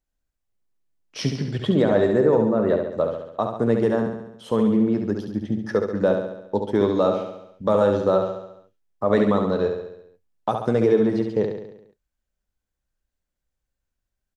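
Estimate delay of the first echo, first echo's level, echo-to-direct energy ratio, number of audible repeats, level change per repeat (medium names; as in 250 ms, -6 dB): 69 ms, -6.0 dB, -4.5 dB, 6, -5.0 dB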